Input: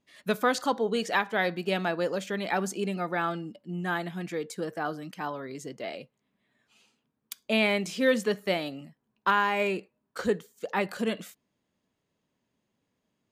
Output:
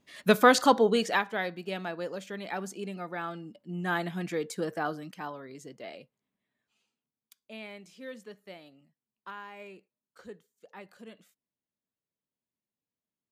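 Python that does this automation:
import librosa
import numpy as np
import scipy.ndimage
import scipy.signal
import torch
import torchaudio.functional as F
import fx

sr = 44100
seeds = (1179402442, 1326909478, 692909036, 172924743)

y = fx.gain(x, sr, db=fx.line((0.77, 6.0), (1.52, -7.0), (3.32, -7.0), (3.99, 1.0), (4.76, 1.0), (5.43, -6.5), (5.97, -6.5), (7.37, -19.0)))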